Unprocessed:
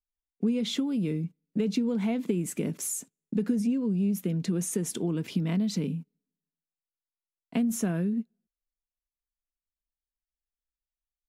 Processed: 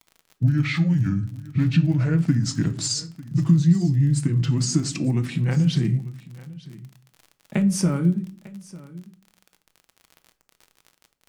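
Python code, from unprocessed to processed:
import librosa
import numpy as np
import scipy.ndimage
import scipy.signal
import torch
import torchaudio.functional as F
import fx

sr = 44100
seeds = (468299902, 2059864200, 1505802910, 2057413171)

p1 = fx.pitch_glide(x, sr, semitones=-9.0, runs='ending unshifted')
p2 = p1 + fx.echo_single(p1, sr, ms=898, db=-19.5, dry=0)
p3 = fx.dmg_crackle(p2, sr, seeds[0], per_s=42.0, level_db=-43.0)
p4 = fx.room_shoebox(p3, sr, seeds[1], volume_m3=430.0, walls='furnished', distance_m=0.62)
y = p4 * librosa.db_to_amplitude(7.5)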